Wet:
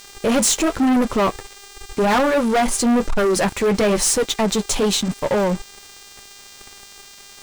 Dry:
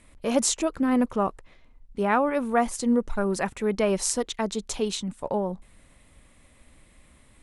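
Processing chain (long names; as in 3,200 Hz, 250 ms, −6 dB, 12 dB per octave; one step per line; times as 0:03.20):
flanger 0.96 Hz, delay 6.1 ms, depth 5.6 ms, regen −43%
hum with harmonics 400 Hz, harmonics 21, −57 dBFS −1 dB per octave
leveller curve on the samples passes 5
level −1 dB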